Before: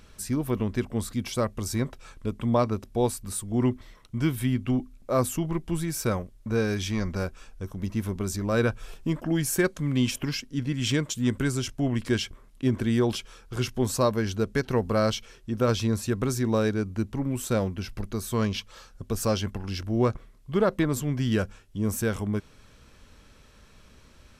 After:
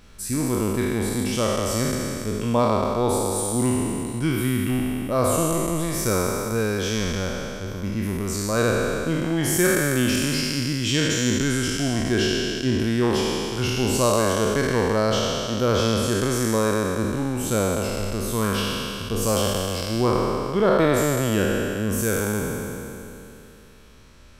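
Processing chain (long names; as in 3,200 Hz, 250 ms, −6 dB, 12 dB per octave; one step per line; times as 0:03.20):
peak hold with a decay on every bin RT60 2.98 s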